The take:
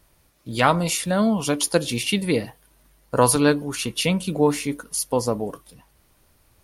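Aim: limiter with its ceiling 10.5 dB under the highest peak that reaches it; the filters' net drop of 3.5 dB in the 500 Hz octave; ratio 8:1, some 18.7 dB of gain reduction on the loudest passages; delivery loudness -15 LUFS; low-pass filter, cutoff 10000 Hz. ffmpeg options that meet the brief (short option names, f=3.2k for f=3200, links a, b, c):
-af "lowpass=10k,equalizer=f=500:t=o:g=-4,acompressor=threshold=-34dB:ratio=8,volume=27dB,alimiter=limit=-5dB:level=0:latency=1"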